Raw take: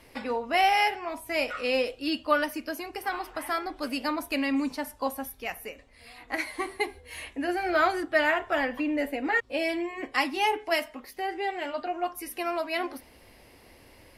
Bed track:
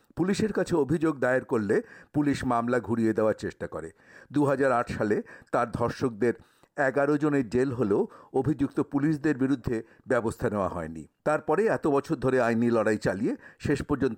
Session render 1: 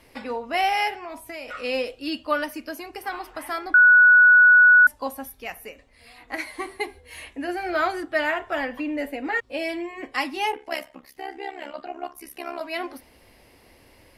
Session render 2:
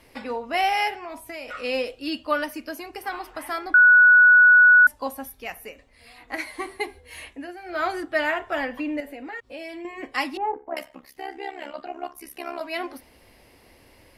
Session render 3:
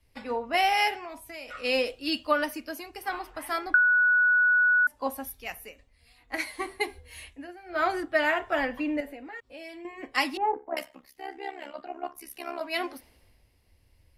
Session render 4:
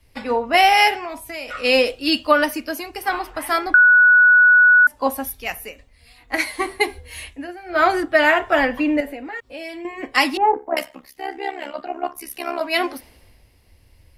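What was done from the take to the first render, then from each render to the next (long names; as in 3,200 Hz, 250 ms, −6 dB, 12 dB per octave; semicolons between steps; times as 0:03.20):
0:00.99–0:01.51: downward compressor 12 to 1, threshold −31 dBFS; 0:03.74–0:04.87: beep over 1,470 Hz −9.5 dBFS; 0:10.52–0:12.61: amplitude modulation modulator 68 Hz, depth 75%
0:07.25–0:07.92: duck −11 dB, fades 0.27 s; 0:09.00–0:09.85: downward compressor 2.5 to 1, threshold −37 dBFS; 0:10.37–0:10.77: low-pass filter 1,200 Hz 24 dB per octave
downward compressor 16 to 1, threshold −21 dBFS, peak gain reduction 10 dB; multiband upward and downward expander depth 70%
level +10 dB; brickwall limiter −3 dBFS, peak gain reduction 3 dB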